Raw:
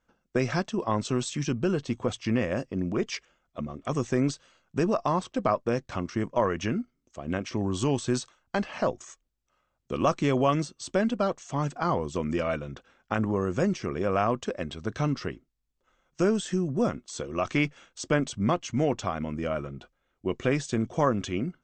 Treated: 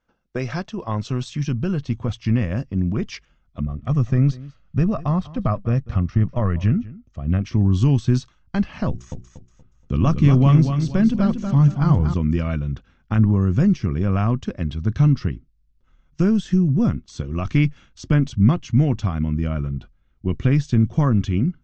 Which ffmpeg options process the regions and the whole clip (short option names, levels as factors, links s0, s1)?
-filter_complex "[0:a]asettb=1/sr,asplit=3[s0][s1][s2];[s0]atrim=end=3.634[s3];[s1]atrim=start=3.63:end=7.42,asetpts=PTS-STARTPTS,afade=t=in:d=0.004:c=qsin,afade=t=out:st=3.786:d=0.004:c=qsin,lowpass=f=2800:p=1,aecho=1:1:1.6:0.37,atrim=end_sample=167139,aecho=1:1:196:0.106,atrim=end_sample=167139[s4];[s2]atrim=start=7.416[s5];[s3][s4]acrossfade=d=0.004:c1=hsin:c2=qsin[s6];[s6][s5]acrossfade=d=0.004:c1=qsin:c2=hsin,asettb=1/sr,asplit=3[s7][s8][s9];[s7]atrim=end=8.884[s10];[s8]atrim=start=8.88:end=12.14,asetpts=PTS-STARTPTS,afade=t=in:d=0.004:c=qsin,afade=t=out:st=3.256:d=0.004:c=qsin,lowshelf=f=190:g=4.5,bandreject=f=60:t=h:w=6,bandreject=f=120:t=h:w=6,bandreject=f=180:t=h:w=6,bandreject=f=240:t=h:w=6,bandreject=f=300:t=h:w=6,bandreject=f=360:t=h:w=6,bandreject=f=420:t=h:w=6,aecho=1:1:237|474|711|948:0.447|0.134|0.0402|0.0121,atrim=end_sample=143766[s11];[s9]atrim=start=12.136[s12];[s10][s11]acrossfade=d=0.004:c1=hsin:c2=qsin[s13];[s13][s12]acrossfade=d=0.004:c1=qsin:c2=hsin,lowpass=f=6000:w=0.5412,lowpass=f=6000:w=1.3066,asubboost=boost=10:cutoff=160"